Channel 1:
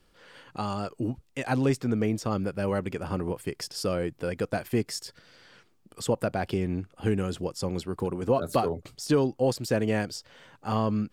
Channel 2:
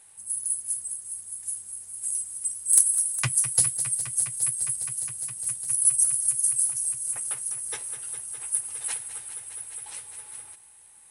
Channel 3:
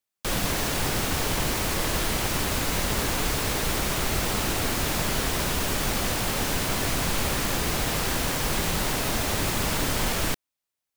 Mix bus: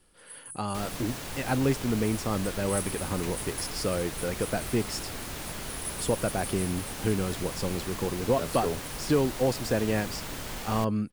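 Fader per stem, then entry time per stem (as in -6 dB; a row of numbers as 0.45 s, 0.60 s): -1.0 dB, -17.0 dB, -11.5 dB; 0.00 s, 0.00 s, 0.50 s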